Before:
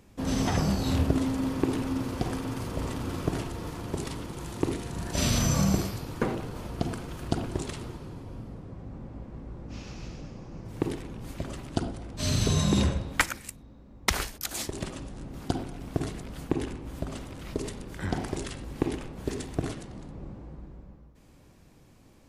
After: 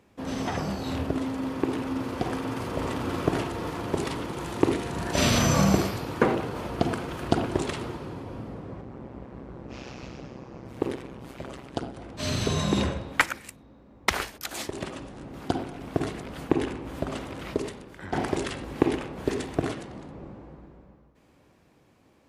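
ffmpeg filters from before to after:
-filter_complex "[0:a]asettb=1/sr,asplit=3[a][b][c];[a]atrim=end=8.814[d];[b]atrim=start=8.81:end=11.97,asetpts=PTS-STARTPTS,afade=t=in:d=0.004:c=qsin,afade=t=out:st=3.156:d=0.004:c=qsin,tremolo=f=130:d=0.788[e];[c]atrim=start=11.966[f];[d][e]acrossfade=d=0.004:c1=hsin:c2=qsin[g];[g][f]acrossfade=d=0.004:c1=qsin:c2=hsin,asplit=2[h][i];[h]atrim=end=18.13,asetpts=PTS-STARTPTS,afade=t=out:st=17.47:d=0.66:c=qua:silence=0.266073[j];[i]atrim=start=18.13,asetpts=PTS-STARTPTS,afade=t=in:d=0.004:c=hsin:silence=0.266073[k];[j][k]concat=n=2:v=0:a=1,dynaudnorm=f=150:g=31:m=11.5dB,highpass=60,bass=f=250:g=-7,treble=f=4k:g=-8"

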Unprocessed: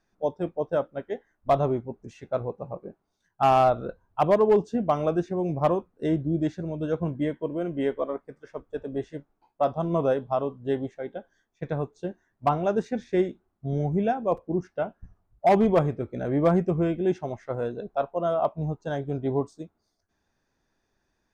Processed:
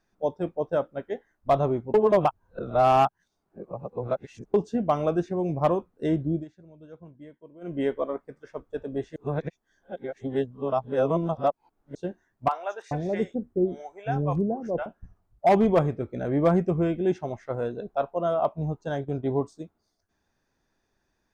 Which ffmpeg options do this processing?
-filter_complex "[0:a]asettb=1/sr,asplit=3[a][b][c];[a]atrim=end=12.484[d];[b]atrim=start=12.48:end=14.86,asetpts=PTS-STARTPTS,afade=t=in:d=0.004:c=qsin,afade=t=out:st=2.376:d=0.004:c=qsin,acrossover=split=630|3700[e][f][g];[g]adelay=30[h];[e]adelay=430[i];[i][f][h]amix=inputs=3:normalize=0,atrim=end_sample=104958[j];[c]atrim=start=14.856[k];[d][j]acrossfade=d=0.004:c1=hsin:c2=qsin[l];[l][k]acrossfade=d=0.004:c1=qsin:c2=hsin,asplit=3[m][n][o];[m]afade=t=out:st=18.99:d=0.02[p];[n]agate=range=-8dB:threshold=-37dB:ratio=16:release=100:detection=peak,afade=t=in:st=18.99:d=0.02,afade=t=out:st=19.41:d=0.02[q];[o]afade=t=in:st=19.41:d=0.02[r];[p][q][r]amix=inputs=3:normalize=0,asplit=7[s][t][u][v][w][x][y];[s]atrim=end=1.942[z];[t]atrim=start=1.938:end=4.542,asetpts=PTS-STARTPTS,areverse[aa];[u]atrim=start=4.538:end=6.45,asetpts=PTS-STARTPTS,afade=t=out:st=1.752:d=0.16:c=qsin:silence=0.112202[ab];[v]atrim=start=6.45:end=7.61,asetpts=PTS-STARTPTS,volume=-19dB[ac];[w]atrim=start=7.61:end=9.162,asetpts=PTS-STARTPTS,afade=t=in:d=0.16:c=qsin:silence=0.112202[ad];[x]atrim=start=9.158:end=11.952,asetpts=PTS-STARTPTS,areverse[ae];[y]atrim=start=11.948[af];[z][aa]acrossfade=d=0.004:c1=hsin:c2=hsin[ag];[ab][ac][ad]concat=n=3:v=0:a=1[ah];[ag][ah]acrossfade=d=0.004:c1=hsin:c2=hsin[ai];[ai][ae]acrossfade=d=0.004:c1=hsin:c2=hsin[aj];[aj][af]acrossfade=d=0.004:c1=hsin:c2=hsin"

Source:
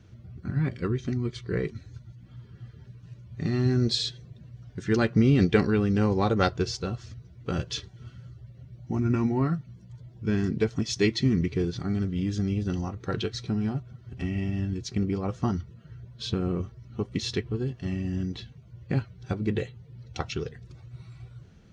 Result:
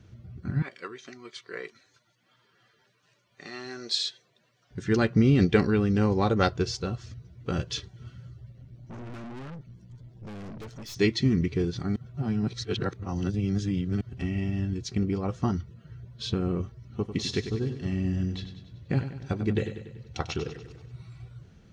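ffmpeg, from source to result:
-filter_complex "[0:a]asettb=1/sr,asplit=3[a][b][c];[a]atrim=end=0.624[d];[b]atrim=start=0.62:end=4.71,asetpts=PTS-STARTPTS,afade=t=in:d=0.004:c=qsin,afade=t=out:st=4.086:d=0.004:c=qsin,highpass=700[e];[c]atrim=start=4.706[f];[d][e]acrossfade=d=0.004:c1=hsin:c2=qsin[g];[g][f]acrossfade=d=0.004:c1=qsin:c2=hsin,asettb=1/sr,asplit=3[h][i][j];[h]atrim=end=8.524[k];[i]atrim=start=8.52:end=10.95,asetpts=PTS-STARTPTS,afade=t=in:d=0.004:c=qsin,afade=t=out:st=2.426:d=0.004:c=qsin,aeval=exprs='(tanh(89.1*val(0)+0.35)-tanh(0.35))/89.1':c=same[l];[j]atrim=start=10.946[m];[k][l]acrossfade=d=0.004:c1=hsin:c2=qsin[n];[n][m]acrossfade=d=0.004:c1=qsin:c2=hsin,asettb=1/sr,asplit=3[o][p][q];[o]atrim=end=16.814[r];[p]atrim=start=16.81:end=20.93,asetpts=PTS-STARTPTS,afade=t=in:d=0.004:c=qsin,afade=t=out:st=4.116:d=0.004:c=qsin,aecho=1:1:96|192|288|384|480|576:0.316|0.171|0.0922|0.0498|0.0269|0.0145,atrim=end_sample=181692[s];[q]atrim=start=20.926[t];[r][s]acrossfade=d=0.004:c1=hsin:c2=qsin[u];[u][t]acrossfade=d=0.004:c1=qsin:c2=hsin,asplit=3[v][w][x];[v]atrim=end=11.962[y];[w]atrim=start=11.958:end=14.012,asetpts=PTS-STARTPTS,areverse[z];[x]atrim=start=14.008[aa];[y][z]acrossfade=d=0.004:c1=hsin:c2=hsin[ab];[ab][aa]acrossfade=d=0.004:c1=hsin:c2=hsin"

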